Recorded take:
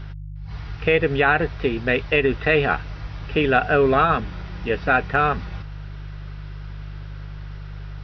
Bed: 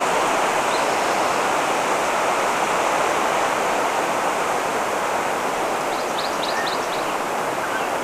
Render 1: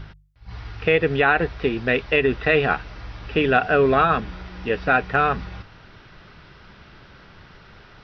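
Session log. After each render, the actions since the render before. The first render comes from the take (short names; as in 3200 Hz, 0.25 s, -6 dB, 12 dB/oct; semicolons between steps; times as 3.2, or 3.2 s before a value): de-hum 50 Hz, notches 3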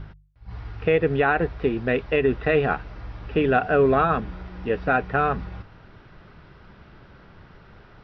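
high shelf 2000 Hz -12 dB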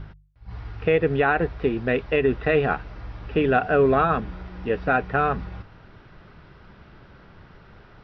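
nothing audible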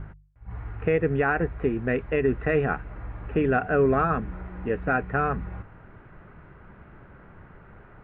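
LPF 2200 Hz 24 dB/oct; dynamic EQ 750 Hz, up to -5 dB, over -33 dBFS, Q 0.72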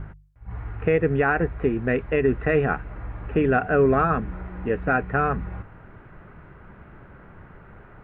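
gain +2.5 dB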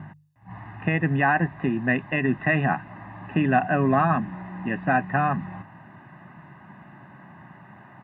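HPF 140 Hz 24 dB/oct; comb 1.1 ms, depth 91%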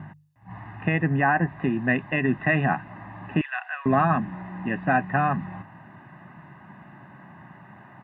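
1.03–1.48 LPF 2300 Hz; 3.41–3.86 Bessel high-pass 1600 Hz, order 8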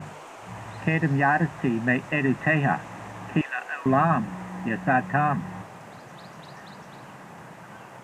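add bed -23.5 dB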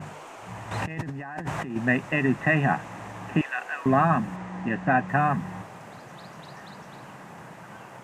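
0.71–1.76 negative-ratio compressor -33 dBFS; 4.36–5.09 air absorption 58 m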